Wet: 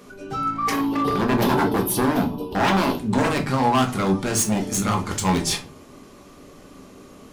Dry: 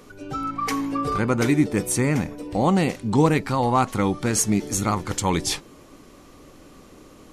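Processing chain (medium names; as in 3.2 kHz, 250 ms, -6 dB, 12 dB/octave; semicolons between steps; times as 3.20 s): 0.72–2.98 s: FFT filter 160 Hz 0 dB, 380 Hz +8 dB, 600 Hz -4 dB, 900 Hz +11 dB, 2 kHz -22 dB, 3 kHz +7 dB, 4.7 kHz +1 dB, 7.6 kHz -14 dB, 13 kHz +12 dB; wavefolder -16.5 dBFS; high-pass 58 Hz 6 dB/octave; simulated room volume 190 m³, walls furnished, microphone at 1.3 m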